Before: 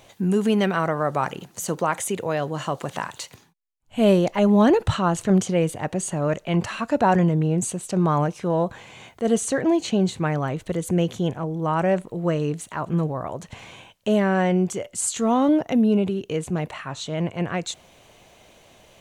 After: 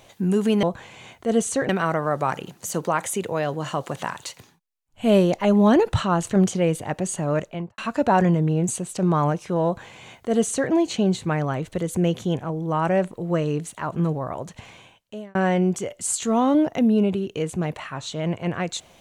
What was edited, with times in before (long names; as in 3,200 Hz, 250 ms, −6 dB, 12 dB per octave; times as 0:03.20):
0:06.31–0:06.72: fade out and dull
0:08.59–0:09.65: duplicate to 0:00.63
0:13.37–0:14.29: fade out